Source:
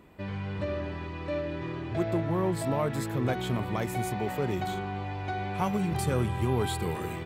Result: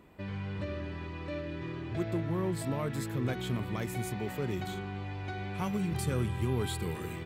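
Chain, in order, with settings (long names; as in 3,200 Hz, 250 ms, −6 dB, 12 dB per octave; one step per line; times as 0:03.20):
dynamic equaliser 750 Hz, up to −7 dB, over −45 dBFS, Q 1.1
level −2.5 dB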